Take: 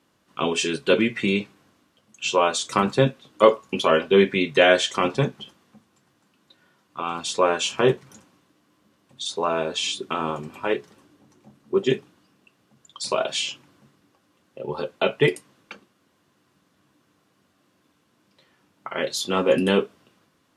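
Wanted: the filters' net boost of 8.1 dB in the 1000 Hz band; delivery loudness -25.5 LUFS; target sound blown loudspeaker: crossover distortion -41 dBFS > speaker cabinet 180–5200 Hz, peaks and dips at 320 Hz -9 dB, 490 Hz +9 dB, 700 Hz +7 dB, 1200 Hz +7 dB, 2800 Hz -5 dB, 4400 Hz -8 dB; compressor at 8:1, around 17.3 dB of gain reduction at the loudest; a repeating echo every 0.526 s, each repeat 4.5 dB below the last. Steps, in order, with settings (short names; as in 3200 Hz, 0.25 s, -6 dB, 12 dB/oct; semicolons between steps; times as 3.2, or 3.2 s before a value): bell 1000 Hz +3.5 dB; compressor 8:1, threshold -26 dBFS; feedback echo 0.526 s, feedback 60%, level -4.5 dB; crossover distortion -41 dBFS; speaker cabinet 180–5200 Hz, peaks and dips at 320 Hz -9 dB, 490 Hz +9 dB, 700 Hz +7 dB, 1200 Hz +7 dB, 2800 Hz -5 dB, 4400 Hz -8 dB; gain +5 dB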